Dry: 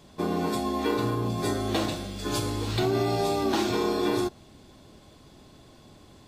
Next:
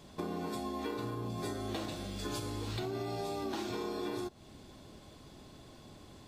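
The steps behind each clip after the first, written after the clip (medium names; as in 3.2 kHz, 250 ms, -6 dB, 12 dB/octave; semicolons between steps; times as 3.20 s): compression 4:1, threshold -35 dBFS, peak gain reduction 11.5 dB; trim -1.5 dB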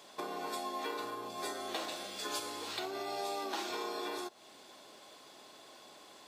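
high-pass 570 Hz 12 dB/octave; trim +4 dB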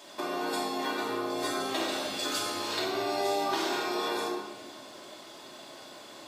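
simulated room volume 1500 m³, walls mixed, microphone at 2.7 m; trim +3.5 dB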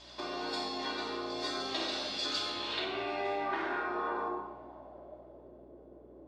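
low-pass sweep 4.7 kHz -> 430 Hz, 2.25–5.70 s; hum 60 Hz, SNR 26 dB; trim -6 dB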